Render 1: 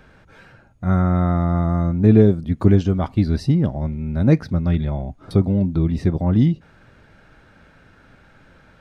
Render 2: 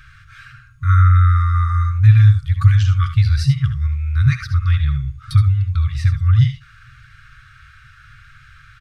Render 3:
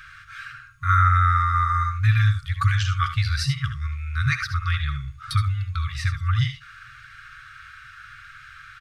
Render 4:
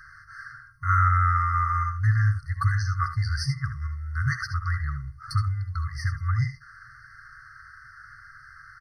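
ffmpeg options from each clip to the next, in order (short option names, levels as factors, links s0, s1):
-af "afftfilt=real='re*(1-between(b*sr/4096,150,1100))':imag='im*(1-between(b*sr/4096,150,1100))':win_size=4096:overlap=0.75,aecho=1:1:67|77:0.237|0.266,volume=2.24"
-af "lowshelf=f=770:t=q:w=1.5:g=-11,volume=1.26"
-af "afftfilt=real='re*eq(mod(floor(b*sr/1024/2100),2),0)':imag='im*eq(mod(floor(b*sr/1024/2100),2),0)':win_size=1024:overlap=0.75,volume=0.708"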